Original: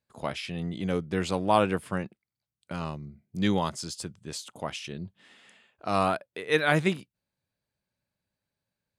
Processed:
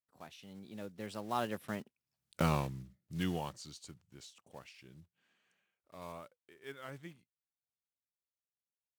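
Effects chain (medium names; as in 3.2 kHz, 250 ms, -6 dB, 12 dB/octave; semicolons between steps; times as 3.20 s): block-companded coder 5-bit; Doppler pass-by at 2.36 s, 41 m/s, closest 4.9 m; trim +6.5 dB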